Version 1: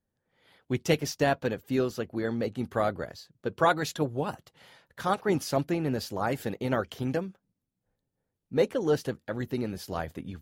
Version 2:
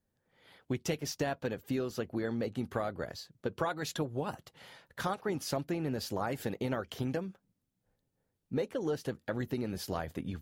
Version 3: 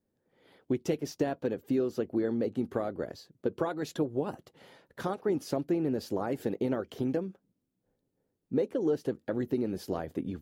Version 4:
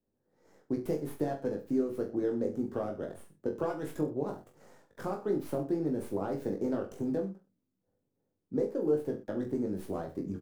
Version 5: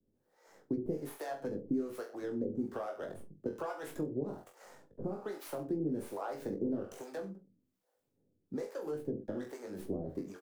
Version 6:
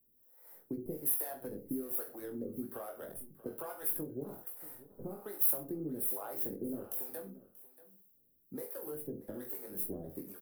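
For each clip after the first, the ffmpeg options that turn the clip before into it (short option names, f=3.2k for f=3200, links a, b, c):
-af "acompressor=threshold=-32dB:ratio=6,volume=1.5dB"
-af "equalizer=f=340:w=0.68:g=12.5,volume=-5.5dB"
-filter_complex "[0:a]acrossover=split=160|1900[a][b][c];[c]aeval=exprs='abs(val(0))':c=same[d];[a][b][d]amix=inputs=3:normalize=0,aecho=1:1:20|42|66.2|92.82|122.1:0.631|0.398|0.251|0.158|0.1,volume=-4dB"
-filter_complex "[0:a]acrossover=split=220|1100[a][b][c];[a]acompressor=threshold=-49dB:ratio=4[d];[b]acompressor=threshold=-39dB:ratio=4[e];[c]acompressor=threshold=-53dB:ratio=4[f];[d][e][f]amix=inputs=3:normalize=0,acrossover=split=520[g][h];[g]aeval=exprs='val(0)*(1-1/2+1/2*cos(2*PI*1.2*n/s))':c=same[i];[h]aeval=exprs='val(0)*(1-1/2-1/2*cos(2*PI*1.2*n/s))':c=same[j];[i][j]amix=inputs=2:normalize=0,volume=7dB"
-af "aexciter=amount=13.4:drive=9.7:freq=10k,aecho=1:1:634:0.126,volume=-5dB"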